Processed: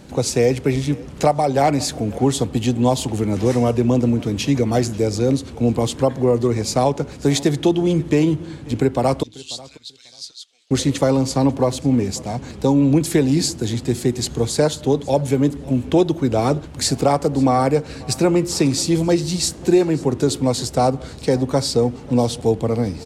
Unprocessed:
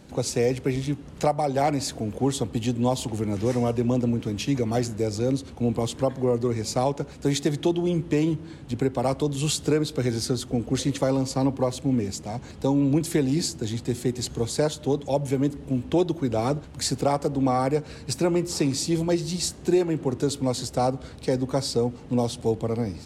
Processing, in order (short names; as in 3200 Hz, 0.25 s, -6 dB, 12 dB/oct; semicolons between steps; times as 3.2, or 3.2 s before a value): 9.23–10.71 ladder band-pass 4600 Hz, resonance 40%; on a send: feedback echo 0.541 s, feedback 16%, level -22 dB; on the sum: gain +6.5 dB